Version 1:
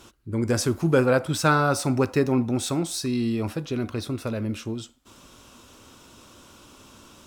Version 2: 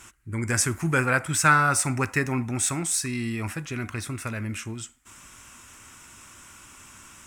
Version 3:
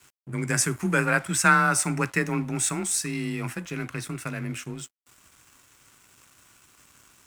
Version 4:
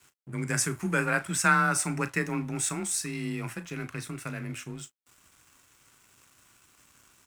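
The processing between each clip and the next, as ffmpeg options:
-af "equalizer=f=250:t=o:w=1:g=-4,equalizer=f=500:t=o:w=1:g=-10,equalizer=f=2k:t=o:w=1:g=12,equalizer=f=4k:t=o:w=1:g=-10,equalizer=f=8k:t=o:w=1:g=11"
-af "afreqshift=27,aeval=exprs='sgn(val(0))*max(abs(val(0))-0.00398,0)':c=same"
-filter_complex "[0:a]asplit=2[a][b];[b]adelay=35,volume=-13.5dB[c];[a][c]amix=inputs=2:normalize=0,volume=-4dB"

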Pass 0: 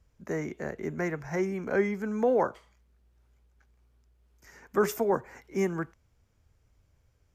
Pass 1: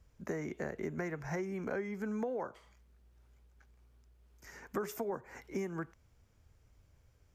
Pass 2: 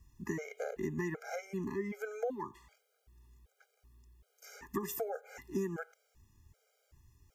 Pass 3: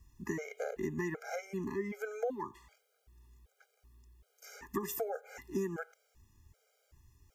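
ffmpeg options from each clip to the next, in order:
-af "acompressor=threshold=-35dB:ratio=10,volume=1dB"
-af "crystalizer=i=1:c=0,afftfilt=real='re*gt(sin(2*PI*1.3*pts/sr)*(1-2*mod(floor(b*sr/1024/410),2)),0)':imag='im*gt(sin(2*PI*1.3*pts/sr)*(1-2*mod(floor(b*sr/1024/410),2)),0)':win_size=1024:overlap=0.75,volume=3dB"
-af "equalizer=f=150:w=1.3:g=-2.5,volume=1dB"

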